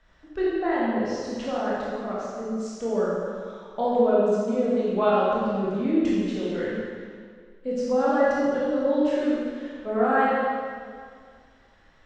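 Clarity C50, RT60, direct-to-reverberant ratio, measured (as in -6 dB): -3.5 dB, 2.0 s, -7.5 dB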